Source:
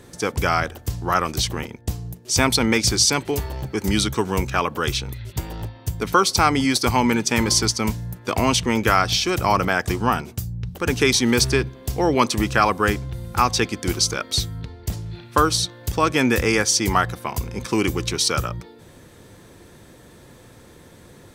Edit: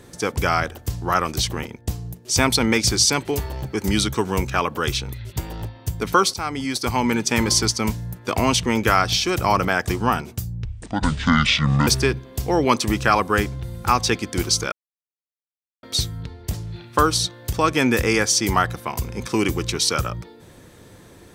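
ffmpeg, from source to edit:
-filter_complex "[0:a]asplit=5[a][b][c][d][e];[a]atrim=end=6.34,asetpts=PTS-STARTPTS,afade=t=out:st=6.336:d=0.004:c=hsin:silence=0.237137[f];[b]atrim=start=6.34:end=10.654,asetpts=PTS-STARTPTS,afade=t=in:d=0.96:silence=0.237137[g];[c]atrim=start=10.65:end=11.37,asetpts=PTS-STARTPTS,asetrate=26019,aresample=44100[h];[d]atrim=start=11.366:end=14.22,asetpts=PTS-STARTPTS,afade=t=out:st=2.85:d=0.004:c=hsin,apad=pad_dur=1.11[i];[e]atrim=start=14.22,asetpts=PTS-STARTPTS,afade=t=in:d=0.004:c=hsin[j];[f][g]concat=n=2:v=0:a=1[k];[k][h]acrossfade=d=0.004:c1=hsin:c2=hsin[l];[i][j]concat=n=2:v=0:a=1[m];[l][m]acrossfade=d=0.004:c1=hsin:c2=hsin"

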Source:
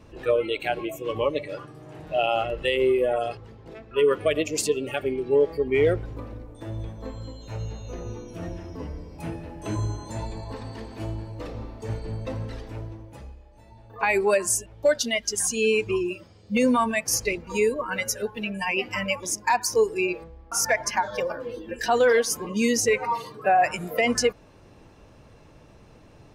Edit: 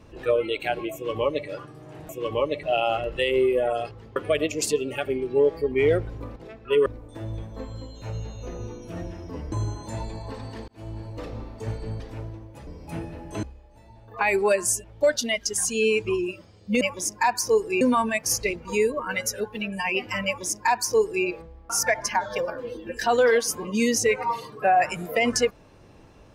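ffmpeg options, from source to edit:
-filter_complex "[0:a]asplit=13[a][b][c][d][e][f][g][h][i][j][k][l][m];[a]atrim=end=2.092[n];[b]atrim=start=0.928:end=1.472[o];[c]atrim=start=2.088:end=3.622[p];[d]atrim=start=4.118:end=6.322[q];[e]atrim=start=3.618:end=4.122[r];[f]atrim=start=6.318:end=8.982[s];[g]atrim=start=9.738:end=10.9,asetpts=PTS-STARTPTS,afade=t=out:st=1.158:d=0.004:c=hsin[t];[h]atrim=start=10.9:end=12.222,asetpts=PTS-STARTPTS,afade=t=in:d=0.36[u];[i]atrim=start=12.578:end=13.252[v];[j]atrim=start=8.978:end=9.742[w];[k]atrim=start=13.248:end=16.632[x];[l]atrim=start=19.068:end=20.072[y];[m]atrim=start=16.628[z];[n][o]acrossfade=d=0.004:c1=hsin:c2=hsin[aa];[aa][p]acrossfade=d=0.004:c1=hsin:c2=hsin[ab];[ab][q]acrossfade=d=0.004:c1=hsin:c2=hsin[ac];[ac][r]acrossfade=d=0.004:c1=hsin:c2=hsin[ad];[ad][s]acrossfade=d=0.004:c1=hsin:c2=hsin[ae];[t][u]concat=n=2:v=0:a=1[af];[ae][af]acrossfade=d=0.004:c1=hsin:c2=hsin[ag];[ag][v]acrossfade=d=0.004:c1=hsin:c2=hsin[ah];[ah][w]acrossfade=d=0.004:c1=hsin:c2=hsin[ai];[ai][x]acrossfade=d=0.004:c1=hsin:c2=hsin[aj];[aj][y]acrossfade=d=0.004:c1=hsin:c2=hsin[ak];[ak][z]acrossfade=d=0.004:c1=hsin:c2=hsin"

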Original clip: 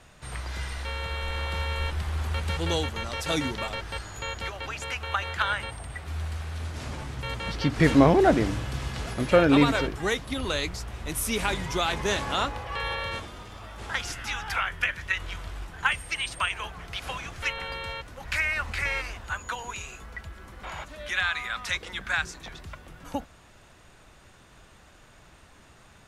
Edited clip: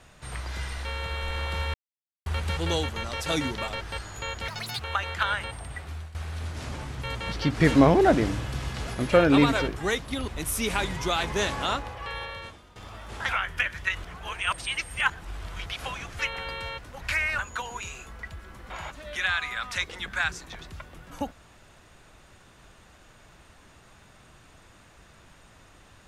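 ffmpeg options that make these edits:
-filter_complex "[0:a]asplit=12[a][b][c][d][e][f][g][h][i][j][k][l];[a]atrim=end=1.74,asetpts=PTS-STARTPTS,afade=t=out:st=1.736:d=0.004:c=hsin[m];[b]atrim=start=1.74:end=2.26,asetpts=PTS-STARTPTS,volume=0[n];[c]atrim=start=2.26:end=4.484,asetpts=PTS-STARTPTS,afade=t=in:d=0.004:c=hsin[o];[d]atrim=start=4.48:end=4.99,asetpts=PTS-STARTPTS,asetrate=71001,aresample=44100[p];[e]atrim=start=4.986:end=6.34,asetpts=PTS-STARTPTS,afade=t=out:st=1.024:d=0.33:silence=0.149624[q];[f]atrim=start=6.34:end=10.472,asetpts=PTS-STARTPTS,afade=t=in:d=0.004:c=hsin:silence=0.149624[r];[g]atrim=start=10.968:end=13.45,asetpts=PTS-STARTPTS,afade=t=out:st=1.282:d=1.2:silence=0.211349[s];[h]atrim=start=13.45:end=13.982,asetpts=PTS-STARTPTS,afade=t=in:d=0.004:c=hsin:silence=0.211349[t];[i]atrim=start=14.518:end=15.272[u];[j]atrim=start=15.268:end=16.892,asetpts=PTS-STARTPTS,areverse[v];[k]atrim=start=16.888:end=18.622[w];[l]atrim=start=19.318[x];[m][n][o]concat=n=3:v=0:a=1[y];[y][p]acrossfade=d=0.004:c1=hsin:c2=hsin[z];[q][r]concat=n=2:v=0:a=1[aa];[z][aa]acrossfade=d=0.004:c1=hsin:c2=hsin[ab];[s][t]concat=n=2:v=0:a=1[ac];[ab][ac]acrossfade=d=0.004:c1=hsin:c2=hsin[ad];[ad][u]acrossfade=d=0.004:c1=hsin:c2=hsin[ae];[ae][v]acrossfade=d=0.004:c1=hsin:c2=hsin[af];[af][w]acrossfade=d=0.004:c1=hsin:c2=hsin[ag];[ag][x]acrossfade=d=0.004:c1=hsin:c2=hsin"

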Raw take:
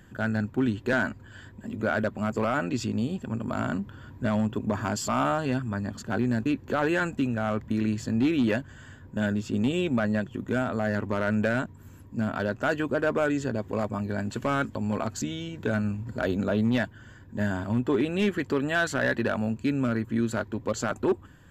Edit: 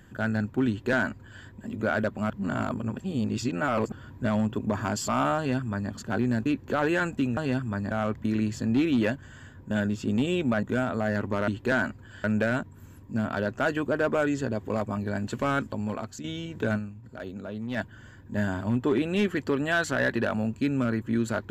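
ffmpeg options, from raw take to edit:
-filter_complex "[0:a]asplit=11[a][b][c][d][e][f][g][h][i][j][k];[a]atrim=end=2.302[l];[b]atrim=start=2.298:end=3.922,asetpts=PTS-STARTPTS,areverse[m];[c]atrim=start=3.918:end=7.372[n];[d]atrim=start=5.368:end=5.912[o];[e]atrim=start=7.368:end=10.092[p];[f]atrim=start=10.418:end=11.272[q];[g]atrim=start=0.688:end=1.452[r];[h]atrim=start=11.268:end=15.27,asetpts=PTS-STARTPTS,afade=t=out:st=3.402:d=0.6:silence=0.316228[s];[i]atrim=start=15.27:end=16.27,asetpts=PTS-STARTPTS,afade=t=in:d=0.004:c=hsin:silence=0.316228,afade=t=out:st=0.52:d=0.48:c=exp:silence=0.281838[t];[j]atrim=start=16.27:end=16.35,asetpts=PTS-STARTPTS,volume=-11dB[u];[k]atrim=start=16.35,asetpts=PTS-STARTPTS,afade=t=in:d=0.48:c=exp:silence=0.281838[v];[l][m]acrossfade=d=0.004:c1=hsin:c2=hsin[w];[w][n]acrossfade=d=0.004:c1=hsin:c2=hsin[x];[x][o]acrossfade=d=0.004:c1=hsin:c2=hsin[y];[y][p]acrossfade=d=0.004:c1=hsin:c2=hsin[z];[z][q]acrossfade=d=0.004:c1=hsin:c2=hsin[aa];[aa][r]acrossfade=d=0.004:c1=hsin:c2=hsin[ab];[s][t][u][v]concat=n=4:v=0:a=1[ac];[ab][ac]acrossfade=d=0.004:c1=hsin:c2=hsin"

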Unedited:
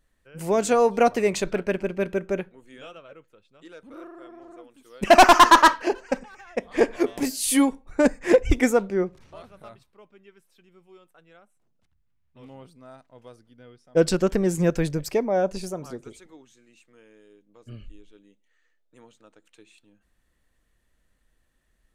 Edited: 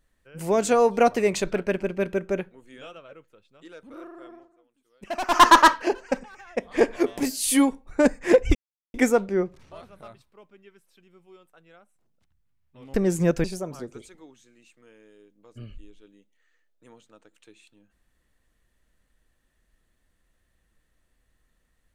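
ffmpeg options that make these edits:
-filter_complex "[0:a]asplit=6[a][b][c][d][e][f];[a]atrim=end=4.49,asetpts=PTS-STARTPTS,afade=t=out:st=4.33:d=0.16:silence=0.133352[g];[b]atrim=start=4.49:end=5.27,asetpts=PTS-STARTPTS,volume=-17.5dB[h];[c]atrim=start=5.27:end=8.55,asetpts=PTS-STARTPTS,afade=t=in:d=0.16:silence=0.133352,afade=t=out:st=3.276:d=0.004:c=hsin,apad=pad_dur=0.39[i];[d]atrim=start=8.55:end=12.552,asetpts=PTS-STARTPTS,afade=t=in:d=0.004:c=hsin[j];[e]atrim=start=14.328:end=14.832[k];[f]atrim=start=15.548[l];[g][h][i][j]concat=n=4:v=0:a=1[m];[m][k]acrossfade=d=0.004:c1=hsin:c2=hsin[n];[n][l]acrossfade=d=0.004:c1=hsin:c2=hsin"

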